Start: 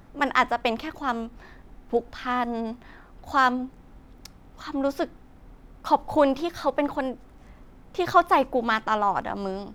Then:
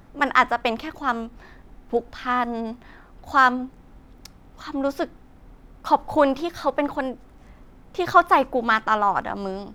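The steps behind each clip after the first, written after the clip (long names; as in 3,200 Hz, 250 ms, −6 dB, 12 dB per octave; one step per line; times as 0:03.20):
dynamic equaliser 1,400 Hz, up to +5 dB, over −33 dBFS, Q 1.7
level +1 dB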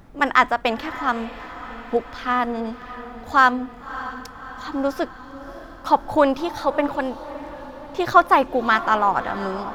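feedback delay with all-pass diffusion 607 ms, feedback 60%, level −14.5 dB
level +1.5 dB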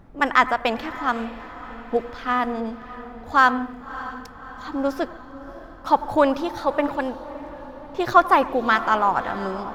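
on a send at −17 dB: convolution reverb RT60 0.55 s, pre-delay 77 ms
on the sum: one half of a high-frequency compander decoder only
level −1 dB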